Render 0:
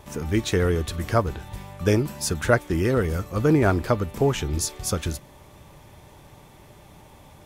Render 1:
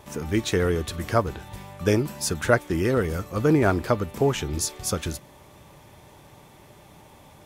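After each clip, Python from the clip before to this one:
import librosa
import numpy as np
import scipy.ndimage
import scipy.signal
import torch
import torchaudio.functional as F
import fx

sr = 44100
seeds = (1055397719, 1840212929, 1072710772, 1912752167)

y = fx.low_shelf(x, sr, hz=65.0, db=-10.0)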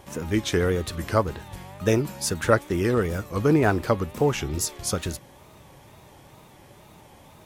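y = fx.wow_flutter(x, sr, seeds[0], rate_hz=2.1, depth_cents=110.0)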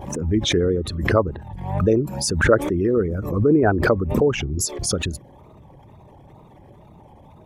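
y = fx.envelope_sharpen(x, sr, power=2.0)
y = fx.pre_swell(y, sr, db_per_s=63.0)
y = y * librosa.db_to_amplitude(3.0)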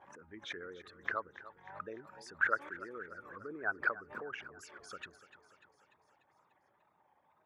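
y = fx.bandpass_q(x, sr, hz=1500.0, q=3.3)
y = fx.echo_feedback(y, sr, ms=295, feedback_pct=60, wet_db=-15.5)
y = y * librosa.db_to_amplitude(-7.5)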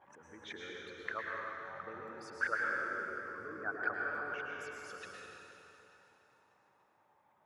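y = fx.rev_plate(x, sr, seeds[1], rt60_s=3.0, hf_ratio=0.85, predelay_ms=95, drr_db=-2.5)
y = y * librosa.db_to_amplitude(-4.0)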